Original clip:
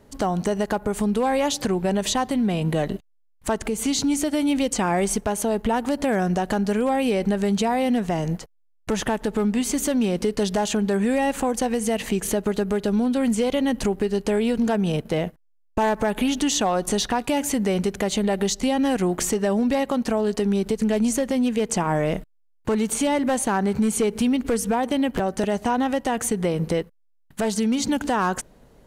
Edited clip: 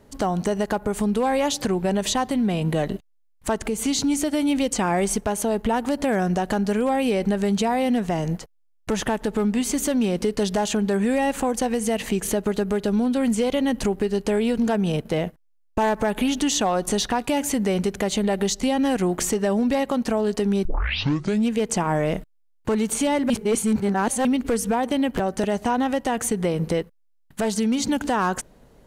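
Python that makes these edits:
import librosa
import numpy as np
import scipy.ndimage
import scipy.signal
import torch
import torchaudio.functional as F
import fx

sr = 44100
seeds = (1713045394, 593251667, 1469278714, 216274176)

y = fx.edit(x, sr, fx.tape_start(start_s=20.65, length_s=0.86),
    fx.reverse_span(start_s=23.3, length_s=0.95), tone=tone)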